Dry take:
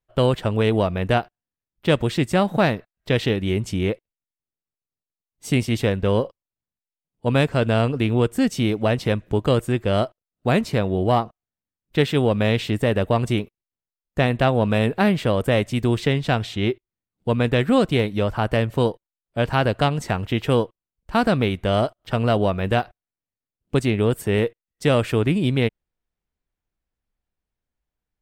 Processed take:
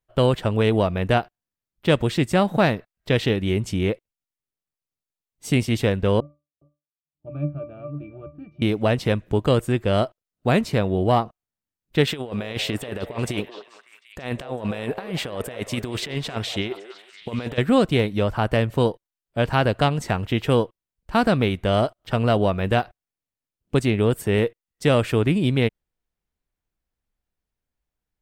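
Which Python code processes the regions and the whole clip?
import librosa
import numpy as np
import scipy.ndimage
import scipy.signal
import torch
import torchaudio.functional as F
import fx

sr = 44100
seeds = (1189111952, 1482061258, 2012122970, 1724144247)

y = fx.chain(x, sr, fx.air_absorb(metres=280.0),
    fx.octave_resonator(note='D', decay_s=0.23),
    fx.echo_single(ms=413, db=-18.0), at=(6.2, 8.62))
y = fx.chain(y, sr, fx.low_shelf(hz=280.0, db=-9.0),
    fx.over_compress(threshold_db=-27.0, ratio=-0.5),
    fx.echo_stepped(ms=186, hz=580.0, octaves=0.7, feedback_pct=70, wet_db=-6.0), at=(12.07, 17.58))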